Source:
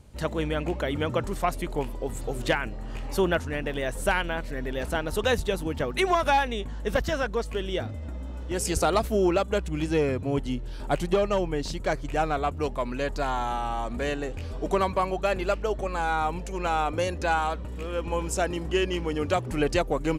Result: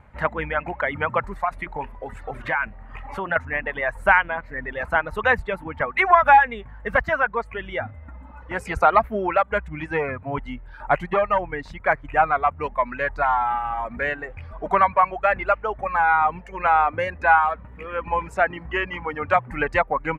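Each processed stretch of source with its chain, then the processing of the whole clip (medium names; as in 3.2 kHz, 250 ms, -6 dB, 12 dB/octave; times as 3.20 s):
1.39–3.36 s: CVSD coder 64 kbps + hum notches 60/120/180/240/300/360/420/480/540/600 Hz + compression, threshold -25 dBFS
whole clip: reverb removal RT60 1.9 s; FFT filter 210 Hz 0 dB, 350 Hz -5 dB, 870 Hz +11 dB, 2.1 kHz +12 dB, 3 kHz -4 dB, 5.3 kHz -17 dB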